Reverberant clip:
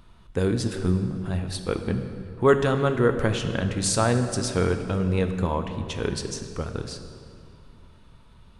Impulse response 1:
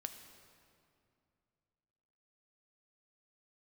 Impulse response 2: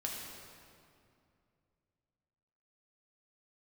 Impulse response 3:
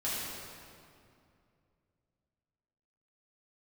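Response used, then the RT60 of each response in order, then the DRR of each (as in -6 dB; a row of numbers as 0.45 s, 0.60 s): 1; 2.5 s, 2.5 s, 2.5 s; 6.5 dB, -2.5 dB, -10.0 dB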